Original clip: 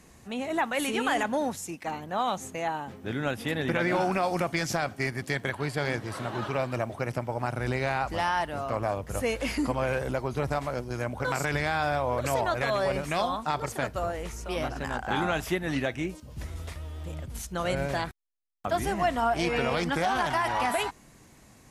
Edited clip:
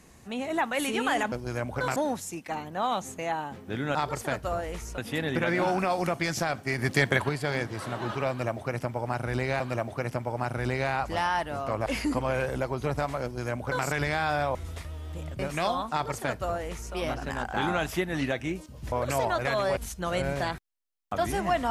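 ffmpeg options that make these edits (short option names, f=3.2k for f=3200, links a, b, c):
-filter_complex "[0:a]asplit=13[a][b][c][d][e][f][g][h][i][j][k][l][m];[a]atrim=end=1.322[n];[b]atrim=start=10.758:end=11.402[o];[c]atrim=start=1.318:end=3.312[p];[d]atrim=start=13.458:end=14.492[q];[e]atrim=start=3.308:end=5.112[r];[f]atrim=start=5.108:end=5.622,asetpts=PTS-STARTPTS,volume=6.5dB[s];[g]atrim=start=5.618:end=7.932[t];[h]atrim=start=6.618:end=8.882[u];[i]atrim=start=9.388:end=12.082[v];[j]atrim=start=16.458:end=17.302[w];[k]atrim=start=12.928:end=16.462[x];[l]atrim=start=12.078:end=12.932[y];[m]atrim=start=17.298[z];[n][o]acrossfade=d=0.004:c1=hsin:c2=hsin[aa];[aa][p]acrossfade=d=0.004:c1=hsin:c2=hsin[ab];[ab][q]acrossfade=d=0.004:c1=hsin:c2=hsin[ac];[ac][r]acrossfade=d=0.004:c1=hsin:c2=hsin[ad];[ad][s]acrossfade=d=0.004:c1=hsin:c2=hsin[ae];[ae][t]acrossfade=d=0.004:c1=hsin:c2=hsin[af];[af][u]acrossfade=d=0.004:c1=hsin:c2=hsin[ag];[ag][v]acrossfade=d=0.004:c1=hsin:c2=hsin[ah];[ah][w]acrossfade=d=0.004:c1=hsin:c2=hsin[ai];[ai][x]acrossfade=d=0.004:c1=hsin:c2=hsin[aj];[aj][y]acrossfade=d=0.004:c1=hsin:c2=hsin[ak];[ak][z]acrossfade=d=0.004:c1=hsin:c2=hsin"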